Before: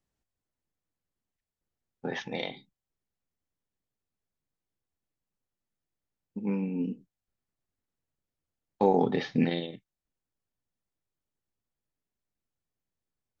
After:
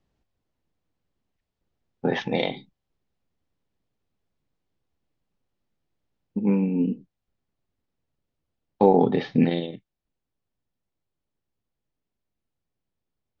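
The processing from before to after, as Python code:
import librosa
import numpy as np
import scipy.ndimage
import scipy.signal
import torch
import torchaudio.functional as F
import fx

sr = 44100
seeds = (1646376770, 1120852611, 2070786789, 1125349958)

p1 = scipy.signal.sosfilt(scipy.signal.butter(2, 3600.0, 'lowpass', fs=sr, output='sos'), x)
p2 = fx.peak_eq(p1, sr, hz=1700.0, db=-5.0, octaves=1.6)
p3 = fx.rider(p2, sr, range_db=10, speed_s=0.5)
y = p2 + (p3 * 10.0 ** (2.0 / 20.0))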